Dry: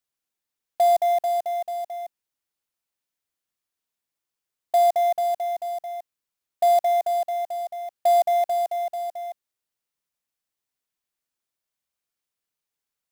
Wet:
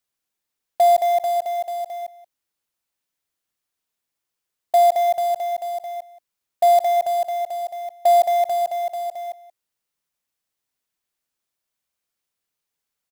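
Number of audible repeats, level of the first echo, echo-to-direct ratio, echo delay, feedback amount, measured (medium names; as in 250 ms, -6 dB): 1, -17.0 dB, -17.0 dB, 179 ms, no regular repeats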